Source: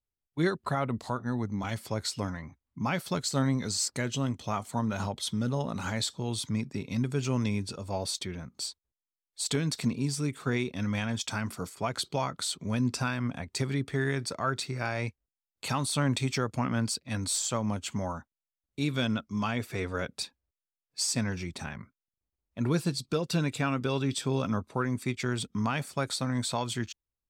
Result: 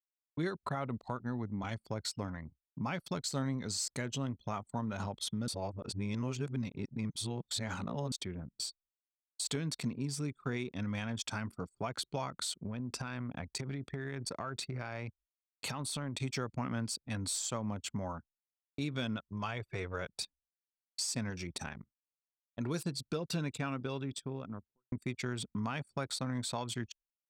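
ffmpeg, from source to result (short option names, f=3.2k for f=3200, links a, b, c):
-filter_complex "[0:a]asettb=1/sr,asplit=3[a][b][c];[a]atrim=end=12.644[d];[b]atrim=start=12.64:end=16.22,asetpts=PTS-STARTPTS,afade=t=in:d=0.004:c=qsin,afade=t=out:st=3.576:d=0.004:c=qsin,acompressor=threshold=-30dB:ratio=12:attack=3.2:release=140:knee=1:detection=peak[e];[c]atrim=start=16.216[f];[d][e]acrossfade=d=0.004:c1=hsin:c2=qsin[g];[g][f]acrossfade=d=0.004:c1=qsin:c2=hsin,asettb=1/sr,asplit=3[h][i][j];[h]atrim=end=19.164[k];[i]atrim=start=19.16:end=20.22,asetpts=PTS-STARTPTS,afade=t=in:d=0.004:c=qsin,afade=t=out:st=1.056:d=0.004:c=qsin,equalizer=f=240:w=3.3:g=-12.5[l];[j]atrim=start=20.216[m];[k][l]acrossfade=d=0.004:c1=hsin:c2=qsin[n];[n][m]acrossfade=d=0.004:c1=qsin:c2=hsin,asettb=1/sr,asplit=3[o][p][q];[o]atrim=end=21.304[r];[p]atrim=start=21.3:end=22.83,asetpts=PTS-STARTPTS,afade=t=in:d=0.004:c=qsin,afade=t=out:st=1.526:d=0.004:c=qsin,bass=f=250:g=-3,treble=f=4k:g=6[s];[q]atrim=start=22.826[t];[r][s]acrossfade=d=0.004:c1=hsin:c2=qsin[u];[u][t]acrossfade=d=0.004:c1=qsin:c2=hsin,asplit=4[v][w][x][y];[v]atrim=end=5.482[z];[w]atrim=start=5.478:end=8.122,asetpts=PTS-STARTPTS,areverse[aa];[x]atrim=start=8.118:end=24.92,asetpts=PTS-STARTPTS,afade=t=out:st=15.352:d=1.45[ab];[y]atrim=start=24.92,asetpts=PTS-STARTPTS,afade=t=in:d=0.004:c=hsin[ac];[z][aa]acrossfade=d=0.004:c1=hsin:c2=hsin[ad];[ab][ac]concat=n=2:v=0:a=1[ae];[ad][ae]acrossfade=d=0.004:c1=hsin:c2=hsin,anlmdn=0.631,agate=range=-33dB:threshold=-51dB:ratio=3:detection=peak,acompressor=threshold=-38dB:ratio=2"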